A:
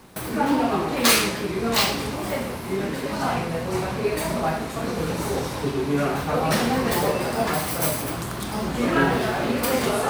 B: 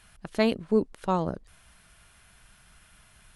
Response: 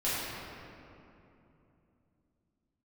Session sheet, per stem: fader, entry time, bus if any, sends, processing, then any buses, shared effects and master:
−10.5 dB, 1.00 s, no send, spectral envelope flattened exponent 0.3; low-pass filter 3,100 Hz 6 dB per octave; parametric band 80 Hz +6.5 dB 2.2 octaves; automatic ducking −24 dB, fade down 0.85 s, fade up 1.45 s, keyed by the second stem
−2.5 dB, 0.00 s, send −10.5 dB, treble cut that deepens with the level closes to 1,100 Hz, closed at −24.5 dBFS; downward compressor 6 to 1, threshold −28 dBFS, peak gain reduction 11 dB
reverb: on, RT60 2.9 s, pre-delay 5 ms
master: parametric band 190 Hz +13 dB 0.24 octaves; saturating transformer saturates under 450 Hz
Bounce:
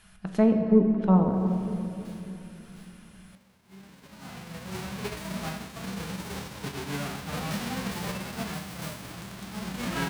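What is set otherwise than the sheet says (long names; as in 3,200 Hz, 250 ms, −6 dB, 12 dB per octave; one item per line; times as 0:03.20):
stem B: missing downward compressor 6 to 1, threshold −28 dBFS, peak gain reduction 11 dB
master: missing saturating transformer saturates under 450 Hz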